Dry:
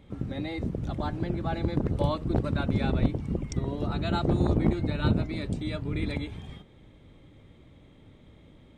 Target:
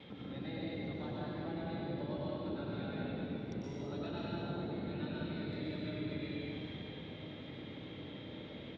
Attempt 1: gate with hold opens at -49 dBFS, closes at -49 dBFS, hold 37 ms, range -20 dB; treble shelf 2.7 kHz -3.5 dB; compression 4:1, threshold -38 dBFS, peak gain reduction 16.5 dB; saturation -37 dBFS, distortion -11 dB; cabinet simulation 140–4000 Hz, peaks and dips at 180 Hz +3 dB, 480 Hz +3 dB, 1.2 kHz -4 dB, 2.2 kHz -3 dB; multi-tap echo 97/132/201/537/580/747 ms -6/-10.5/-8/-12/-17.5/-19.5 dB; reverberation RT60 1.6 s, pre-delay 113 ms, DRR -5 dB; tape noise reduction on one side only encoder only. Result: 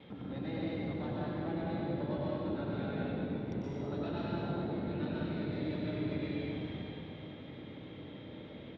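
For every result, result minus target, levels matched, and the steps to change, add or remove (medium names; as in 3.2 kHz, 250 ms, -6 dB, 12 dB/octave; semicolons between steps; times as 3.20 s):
compression: peak gain reduction -6 dB; 4 kHz band -5.5 dB
change: compression 4:1, threshold -46 dBFS, peak gain reduction 22.5 dB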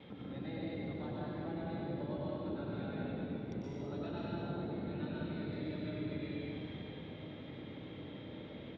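4 kHz band -4.5 dB
change: treble shelf 2.7 kHz +5 dB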